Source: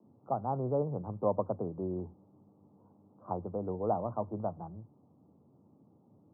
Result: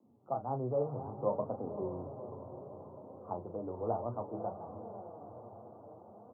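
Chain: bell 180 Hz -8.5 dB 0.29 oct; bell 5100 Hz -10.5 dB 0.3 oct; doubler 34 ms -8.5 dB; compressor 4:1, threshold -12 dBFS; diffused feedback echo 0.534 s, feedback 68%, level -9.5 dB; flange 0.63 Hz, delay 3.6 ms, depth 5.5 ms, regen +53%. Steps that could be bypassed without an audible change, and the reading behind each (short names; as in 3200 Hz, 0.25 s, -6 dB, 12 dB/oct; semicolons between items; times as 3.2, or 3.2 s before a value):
bell 5100 Hz: input band ends at 1300 Hz; compressor, threshold -12 dBFS: input peak -17.0 dBFS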